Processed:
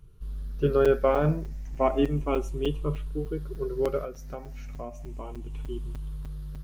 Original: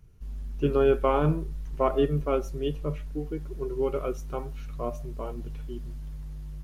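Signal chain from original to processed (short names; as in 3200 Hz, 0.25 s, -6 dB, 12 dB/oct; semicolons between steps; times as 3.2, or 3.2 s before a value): moving spectral ripple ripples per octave 0.64, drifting +0.33 Hz, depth 8 dB; 4.03–5.54 compressor 10:1, threshold -33 dBFS, peak gain reduction 9.5 dB; crackling interface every 0.30 s, samples 256, zero, from 0.85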